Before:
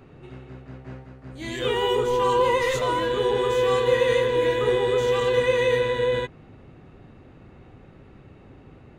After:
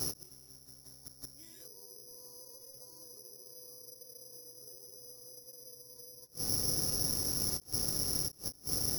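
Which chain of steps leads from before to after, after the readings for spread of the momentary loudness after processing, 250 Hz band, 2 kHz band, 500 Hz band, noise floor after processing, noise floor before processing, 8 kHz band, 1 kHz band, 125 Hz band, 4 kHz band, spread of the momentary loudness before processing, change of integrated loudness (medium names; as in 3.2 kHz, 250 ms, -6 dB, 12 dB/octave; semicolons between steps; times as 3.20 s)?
19 LU, -13.5 dB, -30.5 dB, -30.5 dB, -58 dBFS, -49 dBFS, +7.5 dB, -29.0 dB, -12.0 dB, -7.5 dB, 16 LU, -10.0 dB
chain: AM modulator 210 Hz, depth 25%; low-pass that closes with the level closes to 500 Hz, closed at -21.5 dBFS; compression 8:1, threshold -40 dBFS, peak gain reduction 19.5 dB; on a send: feedback echo behind a low-pass 690 ms, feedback 75%, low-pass 1.4 kHz, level -21.5 dB; on the sum: inverted gate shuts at -38 dBFS, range -26 dB; Bessel low-pass 2 kHz; careless resampling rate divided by 8×, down none, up zero stuff; vibrato 0.46 Hz 5.5 cents; endings held to a fixed fall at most 410 dB/s; trim +7.5 dB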